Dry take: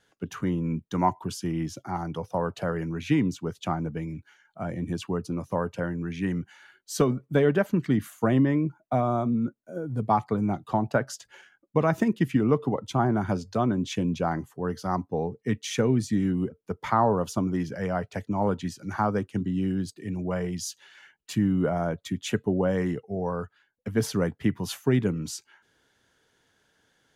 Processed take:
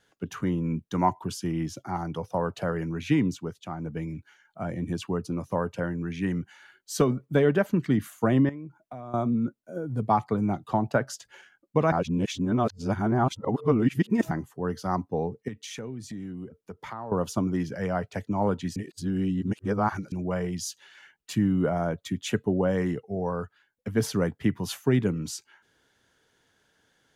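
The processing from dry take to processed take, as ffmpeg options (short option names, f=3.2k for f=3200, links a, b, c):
-filter_complex "[0:a]asettb=1/sr,asplit=3[a][b][c];[a]atrim=end=8.494[d];[b]atrim=start=8.49:end=9.14,asetpts=PTS-STARTPTS,afade=t=in:d=0.004:c=qsin,afade=t=out:st=0.646:d=0.004:c=qsin,acompressor=threshold=-41dB:ratio=3:attack=3.2:release=140:knee=1:detection=peak[e];[c]atrim=start=9.136[f];[d][e]acrossfade=d=0.004:c1=hsin:c2=qsin[g];[g][f]acrossfade=d=0.004:c1=qsin:c2=hsin,asettb=1/sr,asplit=3[h][i][j];[h]atrim=end=15.484[k];[i]atrim=start=15.48:end=17.12,asetpts=PTS-STARTPTS,afade=t=in:d=0.004:c=qsin,afade=t=out:st=1.636:d=0.004:c=qsin,acompressor=threshold=-38dB:ratio=3:attack=3.2:release=140:knee=1:detection=peak[l];[j]atrim=start=17.116[m];[k][l]acrossfade=d=0.004:c1=hsin:c2=qsin[n];[n][m]acrossfade=d=0.004:c1=qsin:c2=hsin,asplit=7[o][p][q][r][s][t][u];[o]atrim=end=3.64,asetpts=PTS-STARTPTS,afade=t=out:st=3.34:d=0.3:silence=0.375837[v];[p]atrim=start=3.64:end=3.7,asetpts=PTS-STARTPTS,volume=-8.5dB[w];[q]atrim=start=3.7:end=11.922,asetpts=PTS-STARTPTS,afade=t=in:d=0.3:silence=0.375837[x];[r]atrim=start=11.918:end=14.312,asetpts=PTS-STARTPTS,areverse[y];[s]atrim=start=14.308:end=18.762[z];[t]atrim=start=18.758:end=20.122,asetpts=PTS-STARTPTS,areverse[aa];[u]atrim=start=20.118[ab];[v][w][x]concat=n=3:v=0:a=1[ac];[ac][y]acrossfade=d=0.004:c1=hsin:c2=hsin[ad];[ad][z]acrossfade=d=0.004:c1=hsin:c2=hsin[ae];[ae][aa]acrossfade=d=0.004:c1=hsin:c2=hsin[af];[af][ab]acrossfade=d=0.004:c1=hsin:c2=hsin"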